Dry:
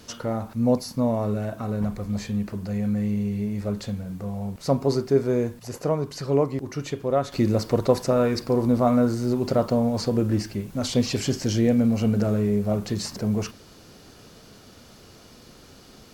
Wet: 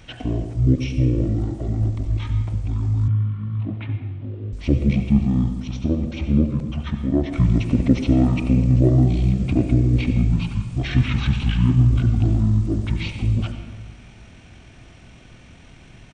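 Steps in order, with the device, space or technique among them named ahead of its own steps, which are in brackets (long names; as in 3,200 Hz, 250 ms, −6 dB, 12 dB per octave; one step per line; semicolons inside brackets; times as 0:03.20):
monster voice (pitch shifter −11.5 semitones; low-shelf EQ 150 Hz +5.5 dB; convolution reverb RT60 1.3 s, pre-delay 70 ms, DRR 7.5 dB)
0:03.08–0:04.53: elliptic band-pass filter 100–3,100 Hz, stop band 40 dB
level +1 dB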